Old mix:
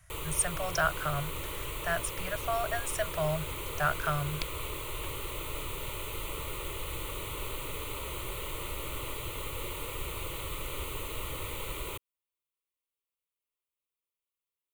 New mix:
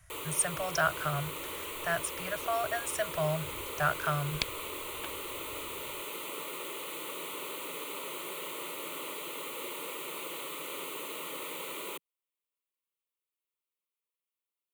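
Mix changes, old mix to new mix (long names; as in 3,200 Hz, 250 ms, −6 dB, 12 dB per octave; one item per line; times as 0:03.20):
first sound: add Butterworth high-pass 180 Hz 48 dB per octave
second sound +7.0 dB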